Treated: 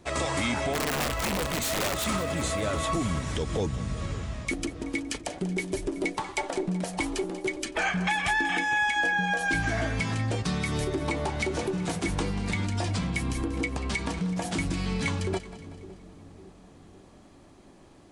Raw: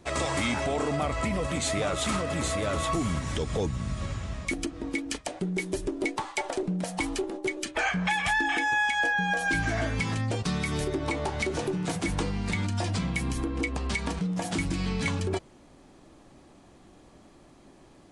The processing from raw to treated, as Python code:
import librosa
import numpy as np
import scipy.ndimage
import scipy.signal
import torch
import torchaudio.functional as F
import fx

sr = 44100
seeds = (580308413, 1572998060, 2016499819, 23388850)

y = fx.overflow_wrap(x, sr, gain_db=22.0, at=(0.73, 2.04), fade=0.02)
y = fx.echo_split(y, sr, split_hz=490.0, low_ms=557, high_ms=188, feedback_pct=52, wet_db=-14.5)